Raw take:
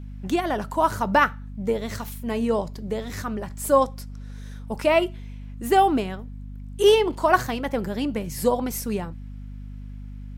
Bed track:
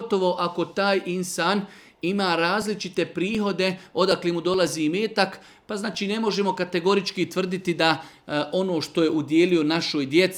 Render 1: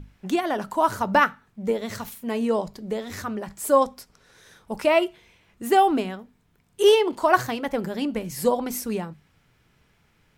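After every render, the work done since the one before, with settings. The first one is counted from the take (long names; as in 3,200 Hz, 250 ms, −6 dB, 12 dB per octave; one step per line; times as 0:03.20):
mains-hum notches 50/100/150/200/250 Hz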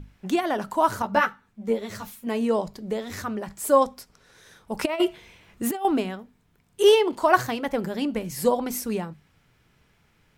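0:01.02–0:02.27: string-ensemble chorus
0:04.79–0:05.85: compressor whose output falls as the input rises −23 dBFS, ratio −0.5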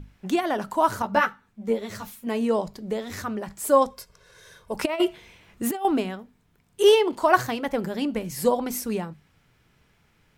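0:03.90–0:04.74: comb filter 1.9 ms, depth 69%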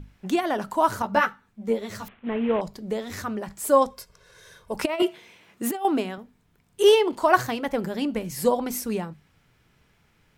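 0:02.08–0:02.61: variable-slope delta modulation 16 kbit/s
0:05.02–0:06.18: high-pass filter 180 Hz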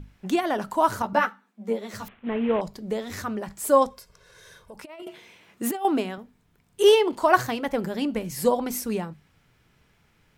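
0:01.13–0:01.94: Chebyshev high-pass with heavy ripple 190 Hz, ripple 3 dB
0:03.89–0:05.07: downward compressor 4 to 1, threshold −42 dBFS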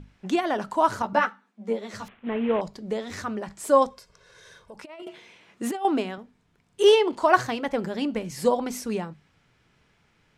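low-pass filter 7,800 Hz 12 dB per octave
low-shelf EQ 110 Hz −5.5 dB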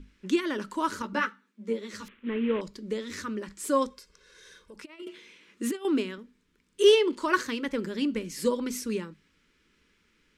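phaser with its sweep stopped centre 300 Hz, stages 4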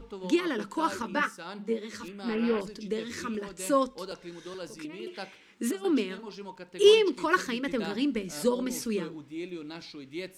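mix in bed track −19 dB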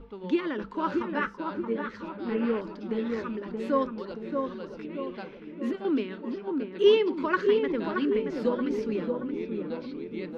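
high-frequency loss of the air 290 metres
feedback echo with a low-pass in the loop 626 ms, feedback 57%, low-pass 1,200 Hz, level −3.5 dB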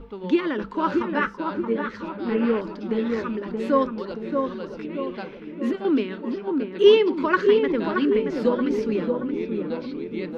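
level +5.5 dB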